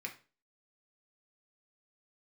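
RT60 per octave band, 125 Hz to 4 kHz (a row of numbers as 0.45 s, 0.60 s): 0.40 s, 0.40 s, 0.35 s, 0.35 s, 0.30 s, 0.30 s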